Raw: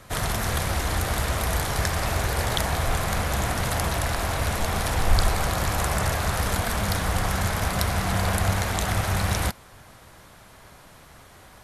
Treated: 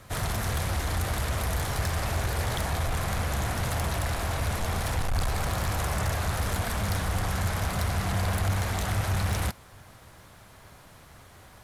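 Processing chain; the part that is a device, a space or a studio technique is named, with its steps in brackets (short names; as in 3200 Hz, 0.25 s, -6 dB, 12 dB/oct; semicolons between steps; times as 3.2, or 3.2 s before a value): open-reel tape (soft clip -20 dBFS, distortion -13 dB; bell 95 Hz +4.5 dB 1.08 oct; white noise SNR 46 dB); gain -3 dB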